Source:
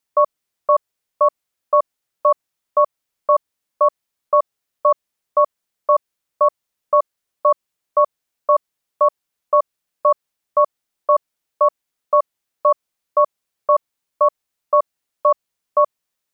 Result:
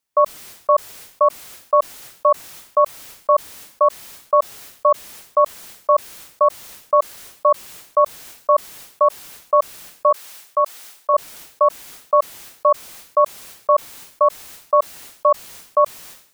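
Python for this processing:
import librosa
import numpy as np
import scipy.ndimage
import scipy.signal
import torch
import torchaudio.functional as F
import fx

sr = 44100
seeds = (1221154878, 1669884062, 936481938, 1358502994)

y = fx.highpass(x, sr, hz=740.0, slope=6, at=(10.11, 11.14))
y = fx.sustainer(y, sr, db_per_s=100.0)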